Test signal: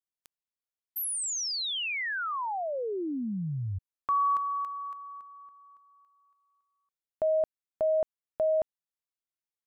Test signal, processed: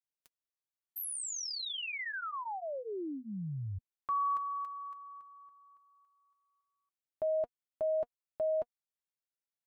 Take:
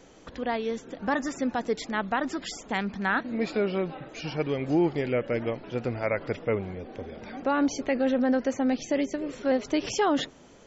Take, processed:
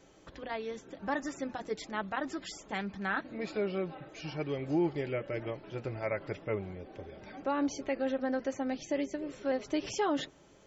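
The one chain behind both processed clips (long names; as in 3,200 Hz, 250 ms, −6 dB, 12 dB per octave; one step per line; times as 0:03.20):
notch comb filter 240 Hz
level −5.5 dB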